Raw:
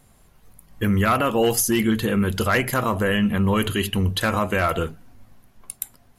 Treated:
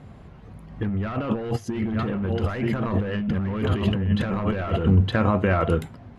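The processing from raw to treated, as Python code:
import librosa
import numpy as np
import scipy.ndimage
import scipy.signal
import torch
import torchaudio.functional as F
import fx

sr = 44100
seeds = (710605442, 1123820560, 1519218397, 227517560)

y = scipy.signal.sosfilt(scipy.signal.butter(2, 73.0, 'highpass', fs=sr, output='sos'), x)
y = fx.peak_eq(y, sr, hz=470.0, db=3.0, octaves=2.4)
y = y + 10.0 ** (-9.5 / 20.0) * np.pad(y, (int(915 * sr / 1000.0), 0))[:len(y)]
y = np.clip(y, -10.0 ** (-16.0 / 20.0), 10.0 ** (-16.0 / 20.0))
y = fx.over_compress(y, sr, threshold_db=-29.0, ratio=-1.0)
y = scipy.signal.sosfilt(scipy.signal.butter(2, 2900.0, 'lowpass', fs=sr, output='sos'), y)
y = fx.low_shelf(y, sr, hz=250.0, db=11.0)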